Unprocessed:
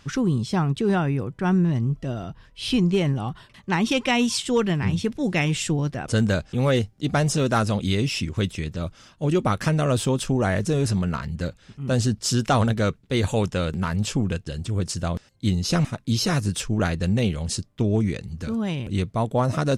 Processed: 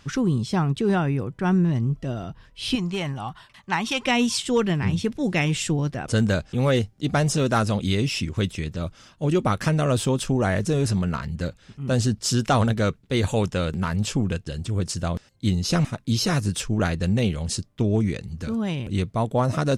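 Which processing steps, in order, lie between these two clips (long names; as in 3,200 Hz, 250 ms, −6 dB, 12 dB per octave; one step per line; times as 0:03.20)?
0:02.75–0:04.02: low shelf with overshoot 610 Hz −6.5 dB, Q 1.5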